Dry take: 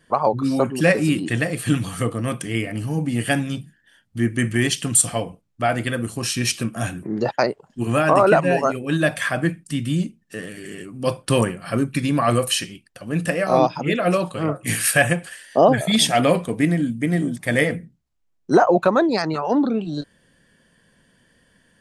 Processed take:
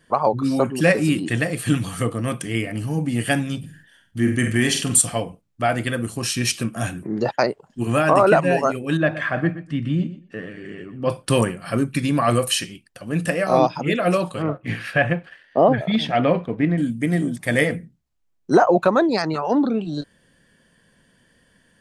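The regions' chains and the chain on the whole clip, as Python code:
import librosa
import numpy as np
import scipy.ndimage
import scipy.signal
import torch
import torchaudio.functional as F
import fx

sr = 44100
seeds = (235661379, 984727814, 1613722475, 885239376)

y = fx.chain(x, sr, fx.room_flutter(wall_m=7.9, rt60_s=0.36),
    fx.sustainer(db_per_s=87.0), at=(3.59, 4.99))
y = fx.chain(y, sr, fx.lowpass(hz=2300.0, slope=12),
    fx.echo_feedback(ms=122, feedback_pct=17, wet_db=-14.0), at=(8.97, 11.1))
y = fx.chain(y, sr, fx.law_mismatch(coded='A'),
    fx.air_absorb(metres=320.0), at=(14.42, 16.78))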